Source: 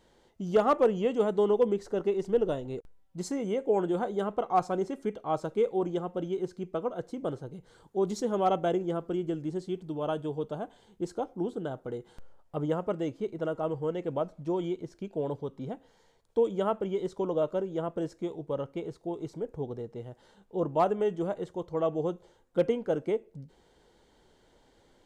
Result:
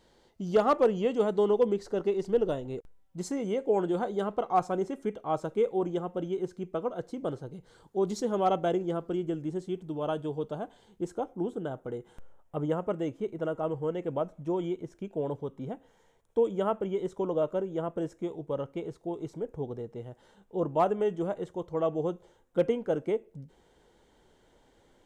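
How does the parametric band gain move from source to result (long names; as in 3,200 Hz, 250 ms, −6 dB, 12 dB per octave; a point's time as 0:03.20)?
parametric band 4,500 Hz 0.41 octaves
+4.5 dB
from 0:02.51 −3 dB
from 0:03.37 +4 dB
from 0:04.57 −5.5 dB
from 0:06.79 +1 dB
from 0:09.24 −7.5 dB
from 0:09.94 −0.5 dB
from 0:11.02 −12 dB
from 0:18.34 −5.5 dB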